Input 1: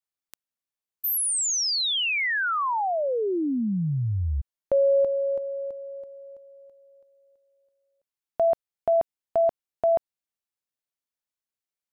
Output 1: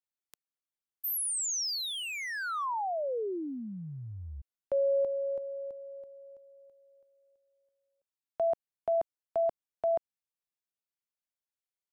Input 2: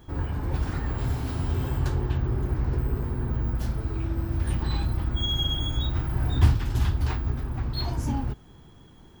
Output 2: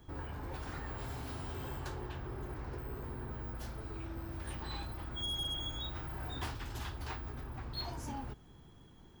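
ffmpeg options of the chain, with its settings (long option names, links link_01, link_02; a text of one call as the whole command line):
ffmpeg -i in.wav -filter_complex "[0:a]acrossover=split=370|1200|5000[link_01][link_02][link_03][link_04];[link_01]acompressor=threshold=-33dB:ratio=6:attack=0.15:release=142:knee=1:detection=peak[link_05];[link_03]volume=31dB,asoftclip=hard,volume=-31dB[link_06];[link_05][link_02][link_06][link_04]amix=inputs=4:normalize=0,volume=-7dB" out.wav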